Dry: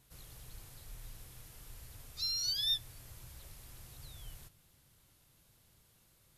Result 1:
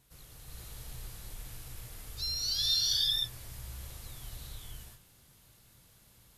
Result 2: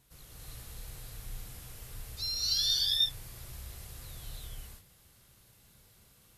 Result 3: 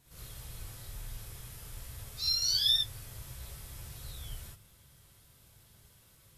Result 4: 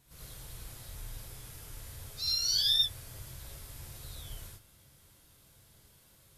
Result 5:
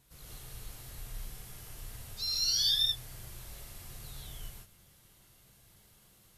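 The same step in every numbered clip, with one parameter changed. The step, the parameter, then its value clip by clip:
reverb whose tail is shaped and stops, gate: 520, 350, 90, 120, 190 milliseconds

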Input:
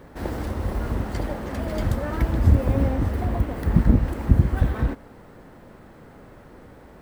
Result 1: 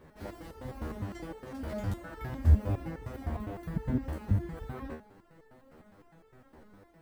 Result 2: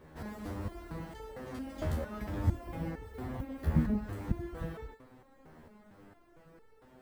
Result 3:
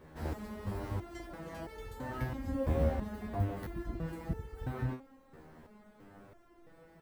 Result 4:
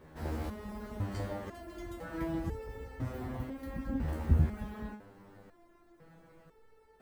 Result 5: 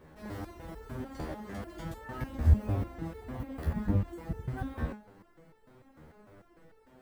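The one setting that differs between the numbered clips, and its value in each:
step-sequenced resonator, speed: 9.8, 4.4, 3, 2, 6.7 Hertz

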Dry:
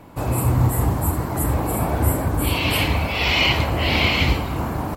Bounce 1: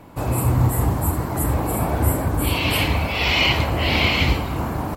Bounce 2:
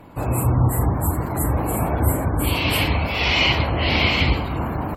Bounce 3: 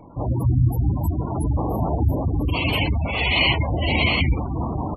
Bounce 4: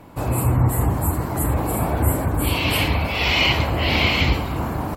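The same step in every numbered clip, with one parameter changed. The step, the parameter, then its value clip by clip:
gate on every frequency bin, under each frame's peak: −60, −35, −15, −45 decibels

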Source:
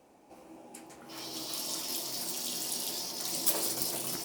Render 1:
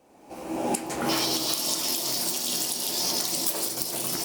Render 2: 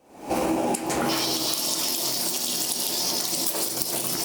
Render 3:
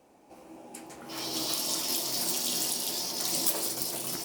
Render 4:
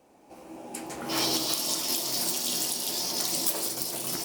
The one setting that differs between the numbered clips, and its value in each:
camcorder AGC, rising by: 37, 91, 5.2, 14 dB per second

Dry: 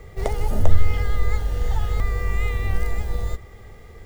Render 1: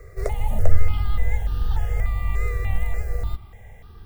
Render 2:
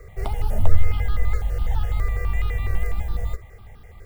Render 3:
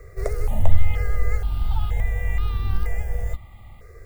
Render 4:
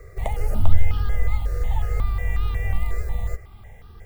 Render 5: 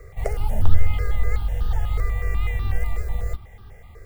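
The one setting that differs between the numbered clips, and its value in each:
step-sequenced phaser, speed: 3.4, 12, 2.1, 5.5, 8.1 Hertz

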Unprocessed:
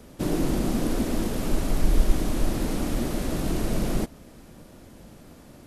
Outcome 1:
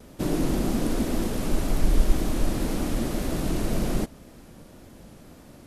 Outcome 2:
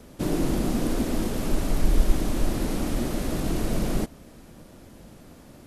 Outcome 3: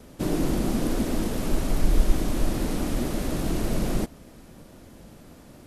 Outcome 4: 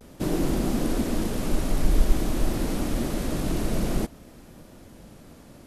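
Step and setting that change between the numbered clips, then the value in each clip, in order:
pitch vibrato, speed: 1.9, 8.1, 4.7, 0.52 Hertz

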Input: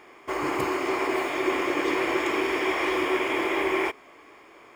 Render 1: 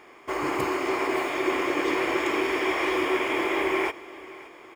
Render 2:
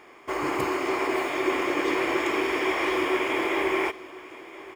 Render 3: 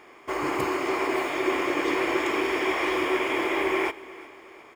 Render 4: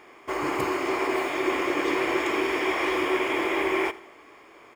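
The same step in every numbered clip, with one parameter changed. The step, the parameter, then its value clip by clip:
repeating echo, delay time: 570, 1,025, 361, 84 milliseconds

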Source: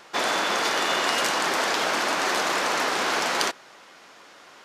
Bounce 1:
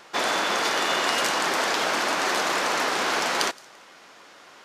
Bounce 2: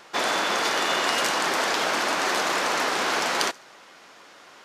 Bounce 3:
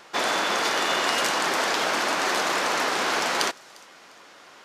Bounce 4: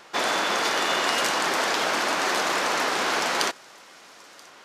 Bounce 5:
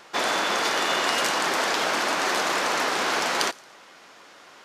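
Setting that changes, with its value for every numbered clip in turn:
delay with a high-pass on its return, delay time: 170, 71, 351, 981, 113 milliseconds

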